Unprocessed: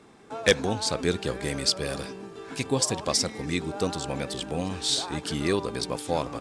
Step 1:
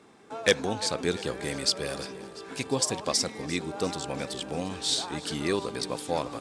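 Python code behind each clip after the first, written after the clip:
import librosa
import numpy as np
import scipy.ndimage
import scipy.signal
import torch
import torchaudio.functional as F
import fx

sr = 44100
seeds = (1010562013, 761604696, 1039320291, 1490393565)

y = fx.low_shelf(x, sr, hz=94.0, db=-10.5)
y = fx.echo_feedback(y, sr, ms=346, feedback_pct=60, wet_db=-18.0)
y = y * 10.0 ** (-1.5 / 20.0)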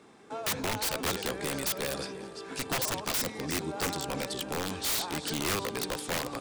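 y = fx.hum_notches(x, sr, base_hz=50, count=2)
y = (np.mod(10.0 ** (23.5 / 20.0) * y + 1.0, 2.0) - 1.0) / 10.0 ** (23.5 / 20.0)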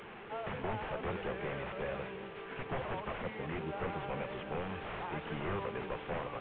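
y = fx.delta_mod(x, sr, bps=16000, step_db=-39.5)
y = fx.peak_eq(y, sr, hz=280.0, db=-13.0, octaves=0.26)
y = y * 10.0 ** (-2.5 / 20.0)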